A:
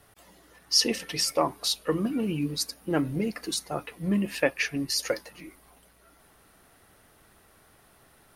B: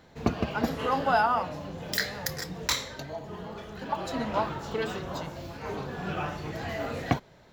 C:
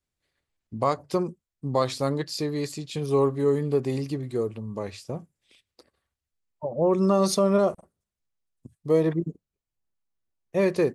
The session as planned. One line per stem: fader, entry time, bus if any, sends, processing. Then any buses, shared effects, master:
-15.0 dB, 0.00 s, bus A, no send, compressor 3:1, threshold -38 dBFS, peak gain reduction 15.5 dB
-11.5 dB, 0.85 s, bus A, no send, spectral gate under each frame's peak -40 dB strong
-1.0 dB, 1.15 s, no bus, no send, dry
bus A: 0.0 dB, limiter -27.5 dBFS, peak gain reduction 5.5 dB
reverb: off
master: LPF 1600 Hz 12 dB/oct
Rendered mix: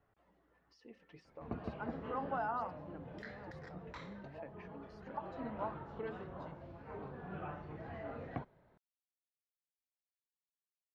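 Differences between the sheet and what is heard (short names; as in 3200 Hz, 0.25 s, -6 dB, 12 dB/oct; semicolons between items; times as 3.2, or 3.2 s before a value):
stem B: entry 0.85 s -> 1.25 s; stem C: muted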